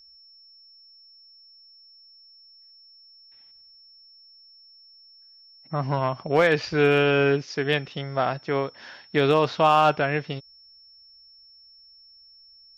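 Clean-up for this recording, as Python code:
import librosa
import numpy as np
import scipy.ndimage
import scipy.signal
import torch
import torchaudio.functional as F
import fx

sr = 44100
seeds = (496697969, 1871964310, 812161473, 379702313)

y = fx.fix_declip(x, sr, threshold_db=-9.5)
y = fx.notch(y, sr, hz=5400.0, q=30.0)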